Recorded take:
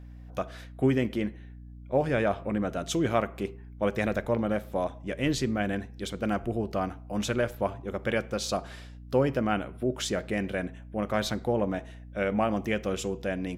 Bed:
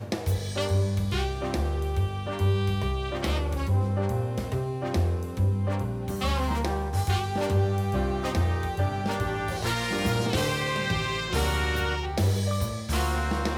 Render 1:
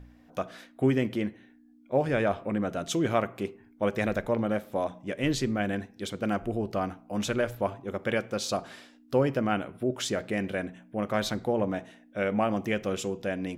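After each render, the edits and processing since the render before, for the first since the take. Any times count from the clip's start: de-hum 60 Hz, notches 3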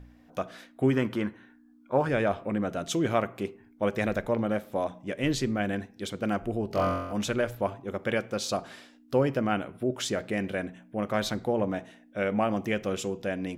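0.93–2.09 s: high-order bell 1.2 kHz +10.5 dB 1 oct; 6.68–7.13 s: flutter echo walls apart 3.8 m, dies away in 0.97 s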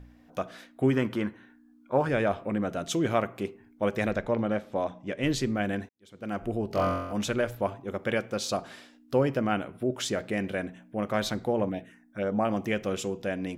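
4.11–5.23 s: low-pass 6.5 kHz; 5.89–6.45 s: fade in quadratic; 11.69–12.45 s: touch-sensitive phaser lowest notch 410 Hz, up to 3 kHz, full sweep at -23 dBFS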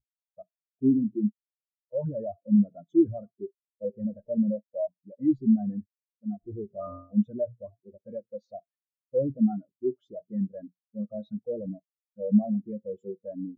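waveshaping leveller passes 5; spectral contrast expander 4:1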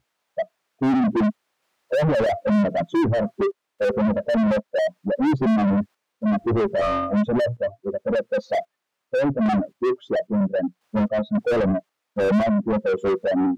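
random-step tremolo 3.7 Hz, depth 75%; overdrive pedal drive 46 dB, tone 1.1 kHz, clips at -12 dBFS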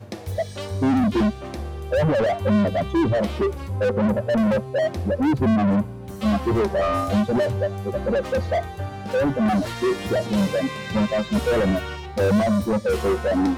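add bed -4 dB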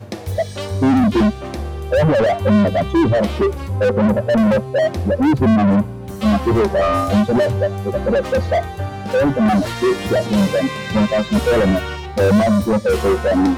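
trim +5.5 dB

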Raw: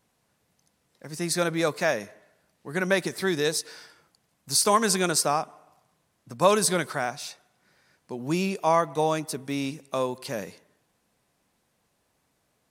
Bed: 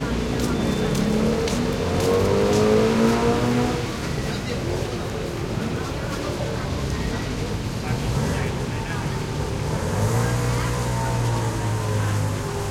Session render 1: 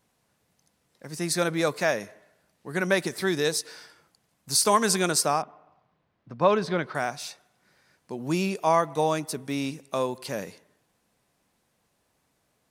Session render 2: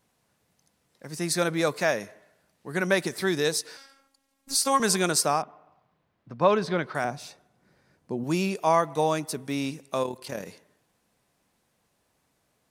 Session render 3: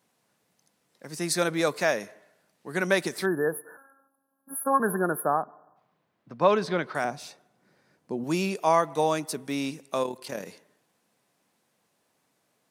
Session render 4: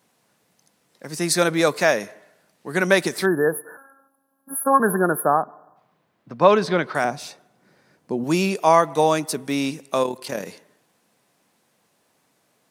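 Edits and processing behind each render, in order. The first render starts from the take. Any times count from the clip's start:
5.42–6.95 s: distance through air 270 m
3.77–4.80 s: robot voice 273 Hz; 7.04–8.24 s: tilt shelf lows +6.5 dB, about 790 Hz; 10.03–10.46 s: AM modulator 37 Hz, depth 45%
3.26–5.77 s: spectral selection erased 1.8–10 kHz; high-pass 160 Hz 12 dB/octave
trim +6.5 dB

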